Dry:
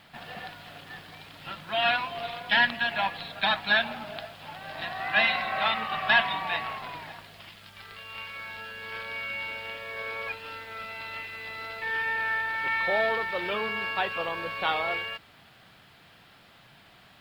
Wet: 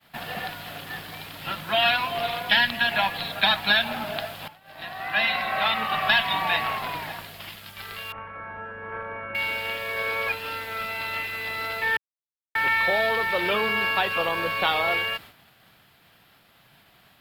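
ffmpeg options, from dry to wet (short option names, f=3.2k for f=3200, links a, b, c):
-filter_complex "[0:a]asettb=1/sr,asplit=3[a][b][c];[a]atrim=end=8.124[d];[b]atrim=start=8.12:end=9.35,asetpts=PTS-STARTPTS,afade=t=in:d=0.004:c=qsin,afade=t=out:st=1.226:d=0.004:c=qsin,lowpass=f=1.5k:w=0.5412,lowpass=f=1.5k:w=1.3066[e];[c]atrim=start=9.346[f];[d][e]acrossfade=d=0.004:c1=hsin:c2=qsin[g];[g][f]acrossfade=d=0.004:c1=qsin:c2=hsin,asplit=4[h][i][j][k];[h]atrim=end=4.48,asetpts=PTS-STARTPTS,afade=t=out:st=4.476:d=0.004:c=hsin:silence=0.16788[l];[i]atrim=start=4.48:end=11.97,asetpts=PTS-STARTPTS,afade=t=in:d=1.88:silence=0.16788,afade=t=out:st=7.486:d=0.004:c=hsin[m];[j]atrim=start=11.97:end=12.55,asetpts=PTS-STARTPTS,volume=0[n];[k]atrim=start=12.55,asetpts=PTS-STARTPTS,afade=t=in:d=0.004:c=hsin[o];[l][m][n][o]concat=n=4:v=0:a=1,agate=range=-33dB:threshold=-47dB:ratio=3:detection=peak,equalizer=f=13k:t=o:w=0.56:g=12.5,acrossover=split=130|3000[p][q][r];[q]acompressor=threshold=-28dB:ratio=6[s];[p][s][r]amix=inputs=3:normalize=0,volume=7.5dB"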